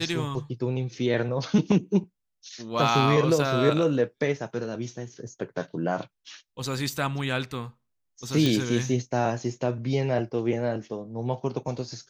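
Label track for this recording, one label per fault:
8.460000	8.460000	pop

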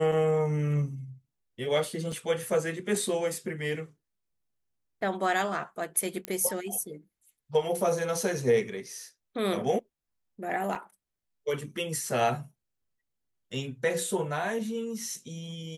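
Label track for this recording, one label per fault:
2.120000	2.120000	gap 3.5 ms
6.250000	6.250000	pop -16 dBFS
10.750000	10.750000	gap 4 ms

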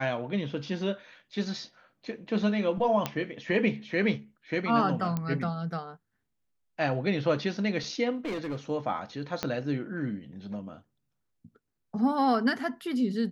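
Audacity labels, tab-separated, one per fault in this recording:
3.060000	3.060000	pop -13 dBFS
5.170000	5.170000	pop -18 dBFS
8.150000	8.560000	clipped -29 dBFS
9.430000	9.430000	pop -13 dBFS

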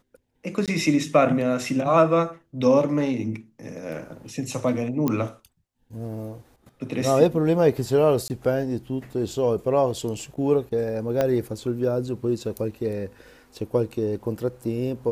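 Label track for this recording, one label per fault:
0.660000	0.680000	gap 17 ms
5.080000	5.080000	pop -11 dBFS
8.280000	8.300000	gap 19 ms
11.210000	11.210000	pop -10 dBFS

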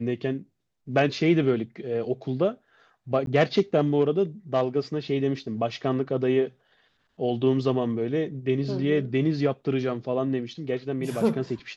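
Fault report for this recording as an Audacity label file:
3.260000	3.270000	gap 12 ms

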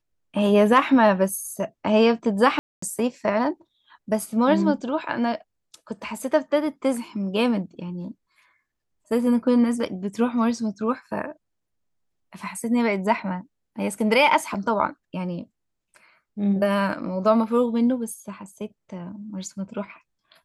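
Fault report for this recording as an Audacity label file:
2.590000	2.820000	gap 0.234 s
14.540000	14.550000	gap 5.2 ms

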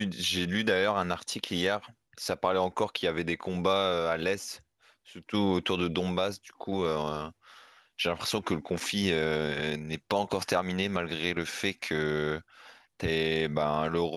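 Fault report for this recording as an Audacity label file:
8.800000	8.800000	gap 4.3 ms

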